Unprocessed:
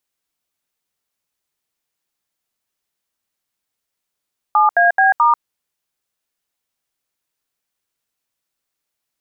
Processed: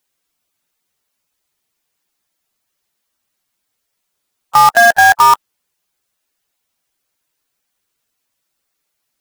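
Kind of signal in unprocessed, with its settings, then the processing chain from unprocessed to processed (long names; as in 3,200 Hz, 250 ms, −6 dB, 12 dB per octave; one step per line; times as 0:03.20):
touch tones "7AB*", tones 141 ms, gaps 75 ms, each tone −12 dBFS
spectral magnitudes quantised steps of 15 dB
in parallel at −7.5 dB: log-companded quantiser 2 bits
on the sum: boost into a limiter +7.5 dB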